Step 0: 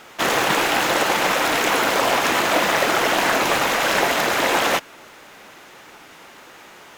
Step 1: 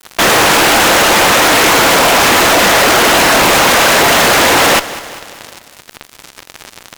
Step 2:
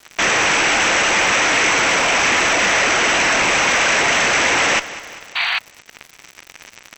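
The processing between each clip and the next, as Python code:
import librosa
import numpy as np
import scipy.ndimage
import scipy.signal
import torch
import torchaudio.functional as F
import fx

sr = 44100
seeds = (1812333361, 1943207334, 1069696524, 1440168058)

y1 = fx.fuzz(x, sr, gain_db=37.0, gate_db=-37.0)
y1 = fx.echo_feedback(y1, sr, ms=198, feedback_pct=55, wet_db=-16.0)
y1 = F.gain(torch.from_numpy(y1), 5.5).numpy()
y2 = fx.spec_paint(y1, sr, seeds[0], shape='noise', start_s=5.35, length_s=0.24, low_hz=660.0, high_hz=4700.0, level_db=-13.0)
y2 = scipy.signal.sosfilt(scipy.signal.cheby1(6, 9, 8000.0, 'lowpass', fs=sr, output='sos'), y2)
y2 = fx.dmg_crackle(y2, sr, seeds[1], per_s=120.0, level_db=-27.0)
y2 = F.gain(torch.from_numpy(y2), -2.0).numpy()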